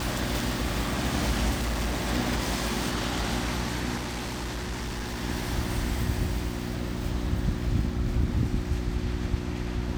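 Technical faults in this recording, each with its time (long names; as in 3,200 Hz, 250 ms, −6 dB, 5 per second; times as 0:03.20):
mains hum 60 Hz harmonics 6 −33 dBFS
0:01.53–0:02.06: clipping −24 dBFS
0:03.96–0:05.22: clipping −29 dBFS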